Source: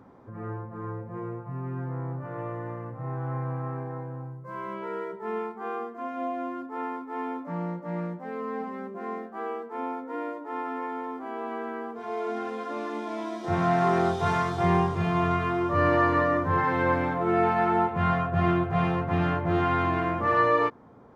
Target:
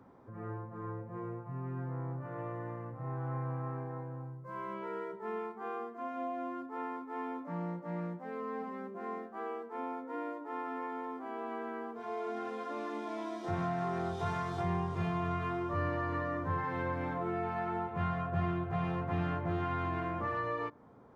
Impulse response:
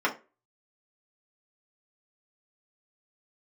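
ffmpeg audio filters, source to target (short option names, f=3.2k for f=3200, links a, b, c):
-filter_complex "[0:a]asplit=2[a][b];[1:a]atrim=start_sample=2205,asetrate=30870,aresample=44100[c];[b][c]afir=irnorm=-1:irlink=0,volume=-35dB[d];[a][d]amix=inputs=2:normalize=0,acrossover=split=140[e][f];[f]acompressor=threshold=-27dB:ratio=6[g];[e][g]amix=inputs=2:normalize=0,volume=-6dB"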